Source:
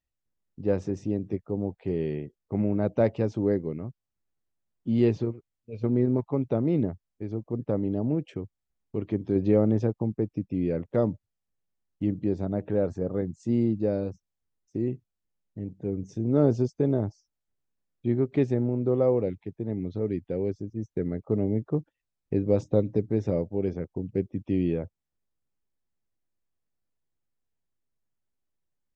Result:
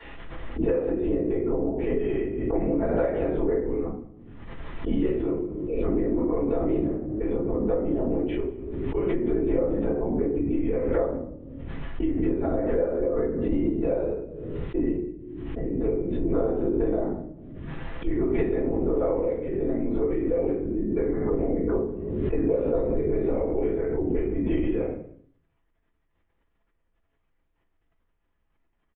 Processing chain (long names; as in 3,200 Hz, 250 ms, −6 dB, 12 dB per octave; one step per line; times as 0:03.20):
linear-prediction vocoder at 8 kHz whisper
three-way crossover with the lows and the highs turned down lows −19 dB, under 310 Hz, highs −17 dB, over 2,500 Hz
mains-hum notches 60/120/180/240/300/360/420 Hz
convolution reverb RT60 0.45 s, pre-delay 3 ms, DRR −11 dB
downward compressor 6 to 1, threshold −22 dBFS, peak gain reduction 15 dB
notch filter 600 Hz, Q 15
single-tap delay 195 ms −21 dB
background raised ahead of every attack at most 33 dB per second